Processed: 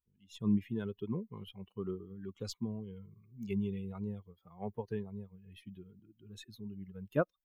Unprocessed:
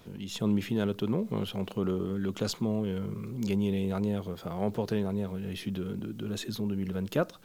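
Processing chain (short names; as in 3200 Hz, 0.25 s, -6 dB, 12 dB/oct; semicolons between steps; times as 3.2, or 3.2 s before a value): per-bin expansion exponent 2; high shelf 6400 Hz -4 dB; upward expander 1.5:1, over -54 dBFS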